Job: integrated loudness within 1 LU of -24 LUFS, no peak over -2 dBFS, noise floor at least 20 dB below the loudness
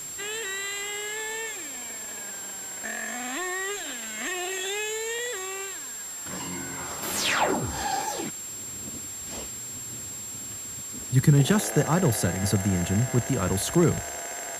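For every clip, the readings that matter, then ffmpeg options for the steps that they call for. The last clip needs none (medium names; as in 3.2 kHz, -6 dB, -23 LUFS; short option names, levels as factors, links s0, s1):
steady tone 7.5 kHz; tone level -35 dBFS; noise floor -37 dBFS; noise floor target -48 dBFS; loudness -27.5 LUFS; peak level -7.0 dBFS; loudness target -24.0 LUFS
-> -af "bandreject=f=7500:w=30"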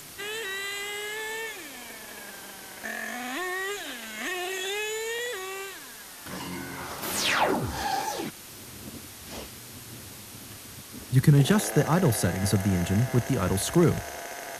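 steady tone not found; noise floor -44 dBFS; noise floor target -48 dBFS
-> -af "afftdn=nr=6:nf=-44"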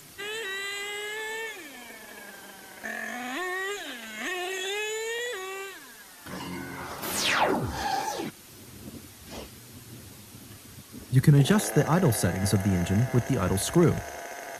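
noise floor -49 dBFS; loudness -27.5 LUFS; peak level -7.0 dBFS; loudness target -24.0 LUFS
-> -af "volume=1.5"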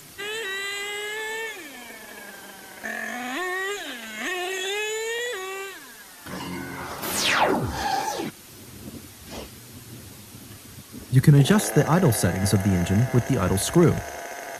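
loudness -24.0 LUFS; peak level -3.5 dBFS; noise floor -45 dBFS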